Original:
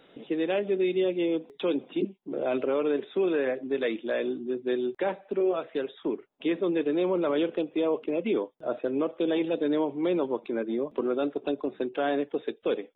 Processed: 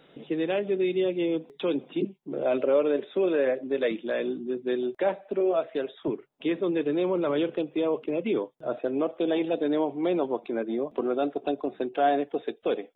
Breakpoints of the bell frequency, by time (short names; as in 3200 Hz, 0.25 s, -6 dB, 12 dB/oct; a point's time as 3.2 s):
bell +9 dB 0.25 oct
150 Hz
from 2.45 s 570 Hz
from 3.91 s 180 Hz
from 4.83 s 640 Hz
from 6.08 s 140 Hz
from 8.77 s 710 Hz